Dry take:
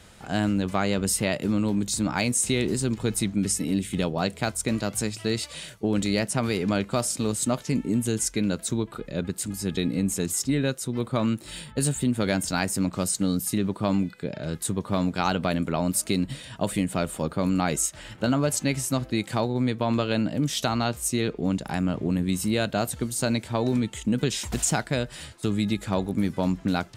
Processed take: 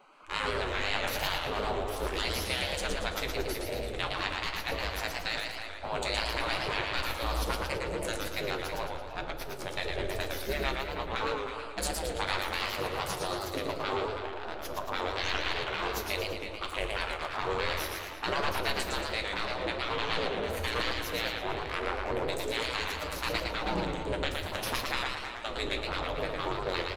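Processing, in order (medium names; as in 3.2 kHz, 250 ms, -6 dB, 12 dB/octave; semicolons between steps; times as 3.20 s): local Wiener filter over 25 samples; spectral gate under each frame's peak -20 dB weak; peaking EQ 13 kHz -9.5 dB 2.7 oct; speakerphone echo 320 ms, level -10 dB; in parallel at +3 dB: peak limiter -32 dBFS, peak gain reduction 11.5 dB; on the sum: flange 0.76 Hz, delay 5.2 ms, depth 9.2 ms, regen -40%; on a send at -9 dB: resonant low shelf 110 Hz +7.5 dB, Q 3 + reverberation RT60 0.90 s, pre-delay 6 ms; on the sum: modulated delay 113 ms, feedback 48%, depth 177 cents, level -3.5 dB; trim +7 dB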